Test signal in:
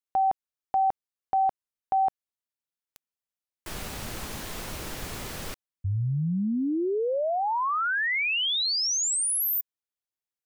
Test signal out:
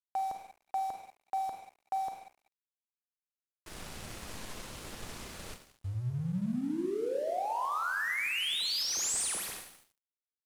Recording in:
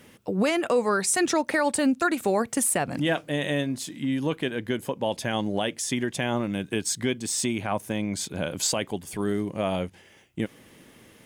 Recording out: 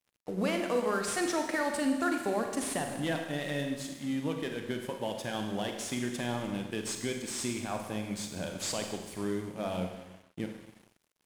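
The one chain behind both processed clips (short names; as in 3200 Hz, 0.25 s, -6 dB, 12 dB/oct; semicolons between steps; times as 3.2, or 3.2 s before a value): CVSD 64 kbps; Schroeder reverb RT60 1.3 s, combs from 33 ms, DRR 3 dB; crossover distortion -44.5 dBFS; gain -7.5 dB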